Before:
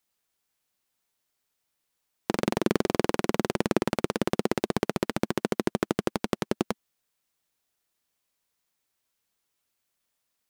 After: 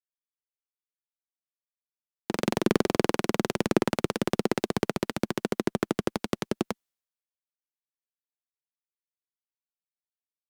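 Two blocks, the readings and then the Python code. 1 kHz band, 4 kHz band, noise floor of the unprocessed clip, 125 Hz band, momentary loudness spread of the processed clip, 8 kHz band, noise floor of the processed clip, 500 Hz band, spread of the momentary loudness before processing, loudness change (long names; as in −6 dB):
−0.5 dB, +1.0 dB, −80 dBFS, +0.5 dB, 7 LU, +0.5 dB, below −85 dBFS, 0.0 dB, 5 LU, +0.5 dB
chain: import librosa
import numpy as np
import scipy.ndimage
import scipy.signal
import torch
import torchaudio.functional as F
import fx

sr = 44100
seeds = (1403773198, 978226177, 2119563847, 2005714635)

y = fx.cheby_harmonics(x, sr, harmonics=(2, 7), levels_db=(-26, -43), full_scale_db=-5.5)
y = fx.band_widen(y, sr, depth_pct=100)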